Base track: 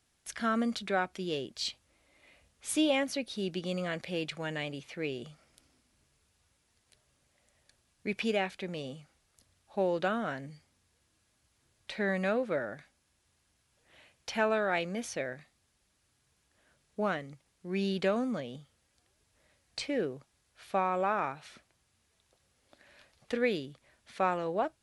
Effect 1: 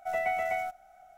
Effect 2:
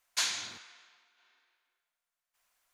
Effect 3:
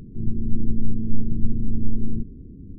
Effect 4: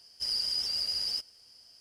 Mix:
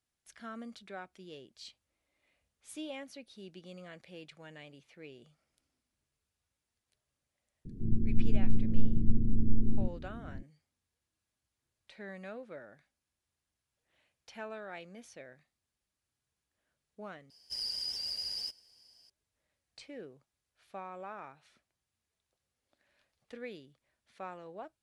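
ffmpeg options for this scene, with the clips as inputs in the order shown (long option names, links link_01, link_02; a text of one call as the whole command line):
ffmpeg -i bed.wav -i cue0.wav -i cue1.wav -i cue2.wav -i cue3.wav -filter_complex "[0:a]volume=-14.5dB[link_01];[4:a]bandreject=frequency=1300:width=5.5[link_02];[link_01]asplit=2[link_03][link_04];[link_03]atrim=end=17.304[link_05];[link_02]atrim=end=1.8,asetpts=PTS-STARTPTS,volume=-6dB[link_06];[link_04]atrim=start=19.096[link_07];[3:a]atrim=end=2.78,asetpts=PTS-STARTPTS,volume=-4.5dB,afade=type=in:duration=0.004:curve=hsin,afade=type=out:start_time=2.776:duration=0.004:curve=hsin,adelay=7650[link_08];[link_05][link_06]acrossfade=duration=0.004:curve1=hsin:curve2=hsin[link_09];[link_09][link_07]acrossfade=duration=0.004:curve1=hsin:curve2=hsin[link_10];[link_10][link_08]amix=inputs=2:normalize=0" out.wav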